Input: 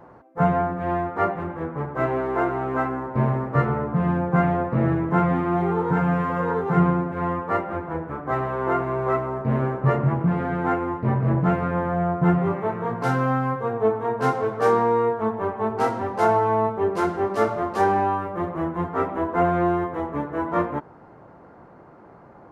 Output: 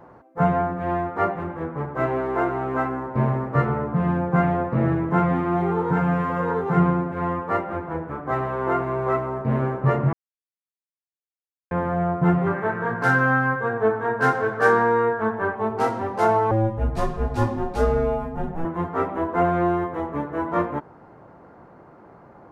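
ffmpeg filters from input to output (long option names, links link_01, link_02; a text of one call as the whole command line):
ffmpeg -i in.wav -filter_complex "[0:a]asettb=1/sr,asplit=3[link_01][link_02][link_03];[link_01]atrim=end=12.464[link_04];[link_02]atrim=start=12.46:end=15.55,asetpts=PTS-STARTPTS,afade=type=in:duration=0.004:curve=qsin,afade=type=out:start_time=3.086:duration=0.004:curve=qsin,equalizer=frequency=1600:width=4.4:gain=14.5[link_05];[link_03]atrim=start=15.546[link_06];[link_04][link_05]acrossfade=duration=0.004:curve1=hsin:curve2=qsin[link_07];[link_07][link_06]acrossfade=duration=0.004:curve1=qsin:curve2=hsin,asettb=1/sr,asplit=3[link_08][link_09][link_10];[link_08]atrim=end=16.514[link_11];[link_09]atrim=start=16.51:end=18.65,asetpts=PTS-STARTPTS,afade=type=in:duration=0.004:curve=qsin,afade=type=out:start_time=2.136:duration=0.004:curve=qsin,afreqshift=-330[link_12];[link_10]atrim=start=18.646[link_13];[link_11][link_12]acrossfade=duration=0.004:curve1=hsin:curve2=qsin[link_14];[link_14][link_13]acrossfade=duration=0.004:curve1=qsin:curve2=hsin,asplit=3[link_15][link_16][link_17];[link_15]atrim=end=10.13,asetpts=PTS-STARTPTS,afade=type=out:start_time=10.126:duration=0.004:curve=hsin[link_18];[link_16]atrim=start=10.13:end=11.71,asetpts=PTS-STARTPTS,volume=0[link_19];[link_17]atrim=start=11.71,asetpts=PTS-STARTPTS,afade=type=in:duration=0.004:curve=hsin[link_20];[link_18][link_19][link_20]concat=n=3:v=0:a=1" out.wav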